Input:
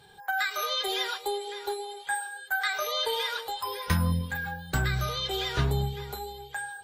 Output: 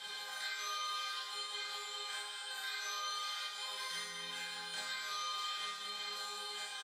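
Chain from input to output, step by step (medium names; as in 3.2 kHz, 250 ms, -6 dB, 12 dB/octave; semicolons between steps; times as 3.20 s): spectral levelling over time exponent 0.4; frequency weighting ITU-R 468; gate -19 dBFS, range -14 dB; high-pass 75 Hz; compression, threshold -32 dBFS, peak gain reduction 17 dB; flange 1.1 Hz, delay 9.5 ms, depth 3.5 ms, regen +84%; chord resonator F3 minor, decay 0.66 s; on a send: delay 209 ms -11 dB; on the sum: Schroeder reverb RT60 0.56 s, combs from 28 ms, DRR -7.5 dB; three bands compressed up and down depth 70%; trim +9 dB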